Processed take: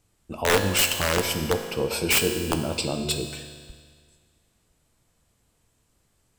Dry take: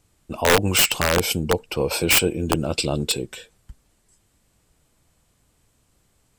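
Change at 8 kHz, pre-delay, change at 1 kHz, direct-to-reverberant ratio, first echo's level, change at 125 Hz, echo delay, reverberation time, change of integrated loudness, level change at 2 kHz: -3.5 dB, 4 ms, -3.5 dB, 6.0 dB, no echo, -4.0 dB, no echo, 1.8 s, -3.5 dB, -3.5 dB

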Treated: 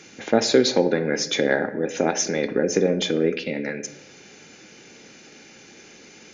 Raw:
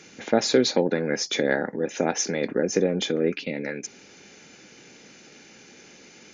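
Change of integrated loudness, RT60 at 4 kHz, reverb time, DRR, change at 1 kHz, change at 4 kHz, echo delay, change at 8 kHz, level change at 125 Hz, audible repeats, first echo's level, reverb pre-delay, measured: +2.5 dB, 0.55 s, 0.95 s, 10.0 dB, +2.5 dB, +2.5 dB, no echo, +2.0 dB, +2.0 dB, no echo, no echo, 3 ms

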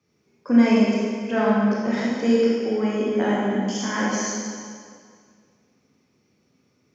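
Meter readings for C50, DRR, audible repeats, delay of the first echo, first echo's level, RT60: -2.5 dB, -6.5 dB, no echo, no echo, no echo, 2.1 s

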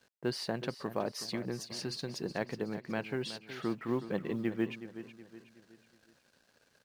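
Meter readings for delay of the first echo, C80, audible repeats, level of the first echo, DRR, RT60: 370 ms, no reverb, 3, -12.5 dB, no reverb, no reverb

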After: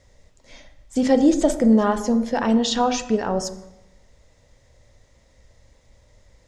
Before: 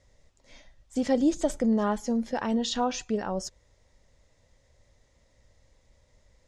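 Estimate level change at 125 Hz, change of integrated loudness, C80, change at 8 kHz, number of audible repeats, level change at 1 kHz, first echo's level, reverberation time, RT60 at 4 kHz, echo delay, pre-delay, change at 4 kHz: +7.5 dB, +8.0 dB, 14.0 dB, +7.0 dB, no echo, +7.5 dB, no echo, 0.95 s, 0.75 s, no echo, 17 ms, +7.0 dB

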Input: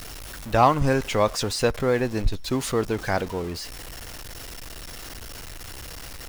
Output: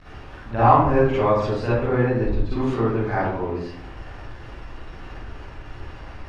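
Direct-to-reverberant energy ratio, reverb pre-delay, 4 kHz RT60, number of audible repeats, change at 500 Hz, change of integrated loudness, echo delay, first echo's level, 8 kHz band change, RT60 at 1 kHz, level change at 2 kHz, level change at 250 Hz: -11.0 dB, 38 ms, 0.45 s, no echo, +2.5 dB, +3.0 dB, no echo, no echo, under -20 dB, 0.65 s, 0.0 dB, +3.5 dB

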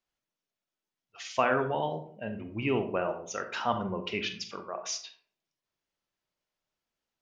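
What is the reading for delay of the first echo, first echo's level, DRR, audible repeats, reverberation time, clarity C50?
no echo, no echo, 7.0 dB, no echo, 0.55 s, 9.5 dB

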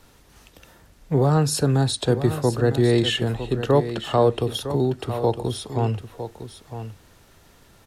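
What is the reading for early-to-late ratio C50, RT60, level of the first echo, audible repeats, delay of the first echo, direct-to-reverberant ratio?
no reverb, no reverb, -11.0 dB, 1, 956 ms, no reverb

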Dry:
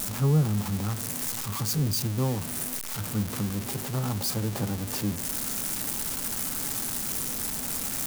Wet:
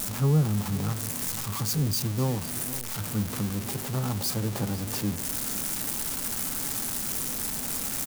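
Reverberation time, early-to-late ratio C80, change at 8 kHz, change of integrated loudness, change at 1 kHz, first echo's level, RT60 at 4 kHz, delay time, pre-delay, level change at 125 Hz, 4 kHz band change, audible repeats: no reverb, no reverb, 0.0 dB, 0.0 dB, 0.0 dB, -16.0 dB, no reverb, 505 ms, no reverb, 0.0 dB, 0.0 dB, 1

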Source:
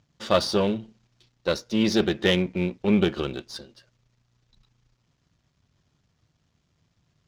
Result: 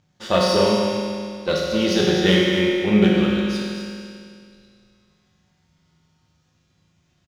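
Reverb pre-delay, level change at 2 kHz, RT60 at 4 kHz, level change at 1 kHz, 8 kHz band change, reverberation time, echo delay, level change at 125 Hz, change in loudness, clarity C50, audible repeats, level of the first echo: 5 ms, +6.5 dB, 2.2 s, +6.0 dB, +6.0 dB, 2.2 s, 249 ms, +6.0 dB, +5.0 dB, -2.5 dB, 1, -8.5 dB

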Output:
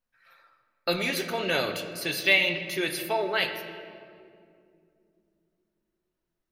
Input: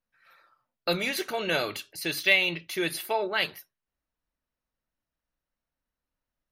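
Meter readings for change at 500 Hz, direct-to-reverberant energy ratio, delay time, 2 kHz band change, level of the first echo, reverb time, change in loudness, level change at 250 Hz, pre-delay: +1.5 dB, 5.0 dB, no echo, +1.0 dB, no echo, 2.4 s, +1.0 dB, +1.0 dB, 7 ms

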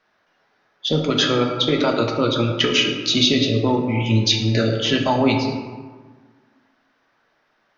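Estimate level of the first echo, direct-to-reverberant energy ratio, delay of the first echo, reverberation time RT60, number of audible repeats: no echo, 1.5 dB, no echo, 1.5 s, no echo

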